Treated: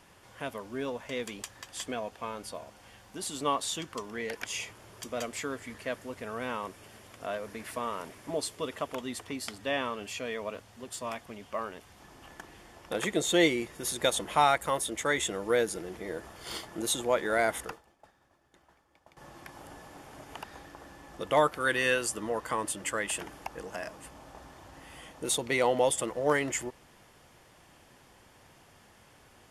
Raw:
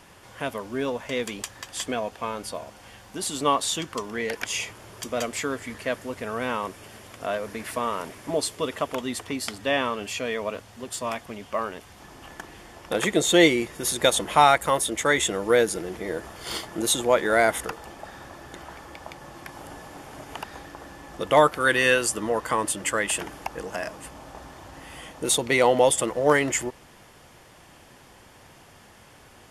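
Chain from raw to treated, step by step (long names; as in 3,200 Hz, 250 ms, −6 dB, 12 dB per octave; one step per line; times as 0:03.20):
0:17.38–0:19.17: downward expander −30 dBFS
level −7 dB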